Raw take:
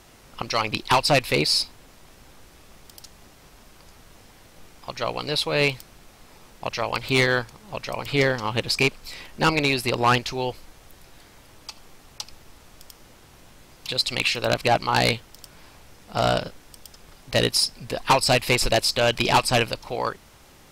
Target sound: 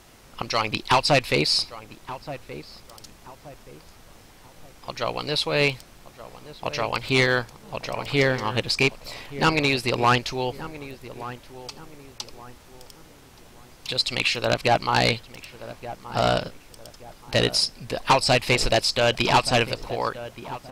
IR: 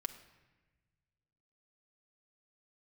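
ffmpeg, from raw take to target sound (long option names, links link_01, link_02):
-filter_complex "[0:a]acrossover=split=8800[link_01][link_02];[link_02]acompressor=threshold=-46dB:ratio=4:attack=1:release=60[link_03];[link_01][link_03]amix=inputs=2:normalize=0,asplit=2[link_04][link_05];[link_05]adelay=1175,lowpass=frequency=1400:poles=1,volume=-14dB,asplit=2[link_06][link_07];[link_07]adelay=1175,lowpass=frequency=1400:poles=1,volume=0.38,asplit=2[link_08][link_09];[link_09]adelay=1175,lowpass=frequency=1400:poles=1,volume=0.38,asplit=2[link_10][link_11];[link_11]adelay=1175,lowpass=frequency=1400:poles=1,volume=0.38[link_12];[link_06][link_08][link_10][link_12]amix=inputs=4:normalize=0[link_13];[link_04][link_13]amix=inputs=2:normalize=0"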